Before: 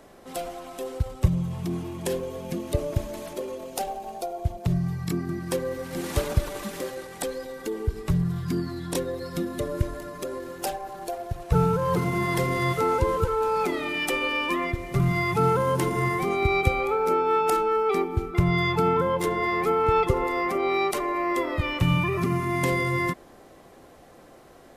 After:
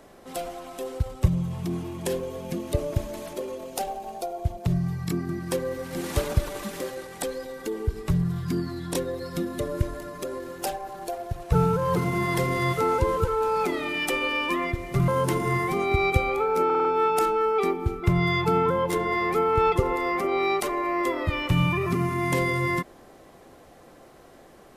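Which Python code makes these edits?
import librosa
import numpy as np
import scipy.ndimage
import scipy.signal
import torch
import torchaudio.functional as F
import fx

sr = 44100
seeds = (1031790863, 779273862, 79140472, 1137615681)

y = fx.edit(x, sr, fx.cut(start_s=15.08, length_s=0.51),
    fx.stutter(start_s=17.16, slice_s=0.05, count=5), tone=tone)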